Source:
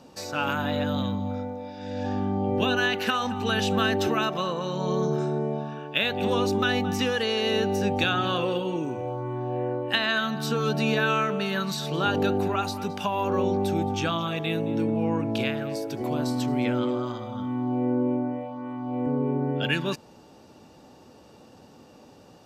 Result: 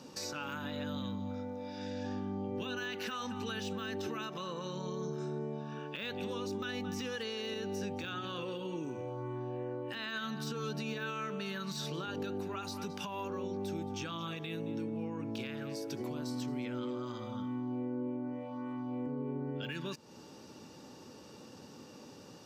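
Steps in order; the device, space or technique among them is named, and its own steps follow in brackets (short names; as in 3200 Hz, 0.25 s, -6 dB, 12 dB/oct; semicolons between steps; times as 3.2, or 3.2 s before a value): broadcast voice chain (HPF 100 Hz; de-esser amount 80%; compressor 3:1, threshold -38 dBFS, peak gain reduction 13 dB; bell 5600 Hz +5 dB 0.64 oct; limiter -28.5 dBFS, peak gain reduction 6.5 dB); bell 700 Hz -9 dB 0.41 oct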